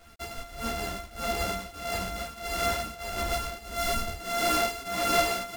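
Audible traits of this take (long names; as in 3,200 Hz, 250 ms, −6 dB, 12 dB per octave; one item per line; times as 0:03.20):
a buzz of ramps at a fixed pitch in blocks of 64 samples
tremolo triangle 1.6 Hz, depth 90%
a quantiser's noise floor 10 bits, dither none
a shimmering, thickened sound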